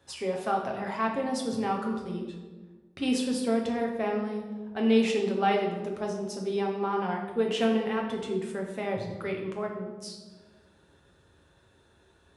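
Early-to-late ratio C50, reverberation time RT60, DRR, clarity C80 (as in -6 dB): 4.5 dB, 1.4 s, -0.5 dB, 7.0 dB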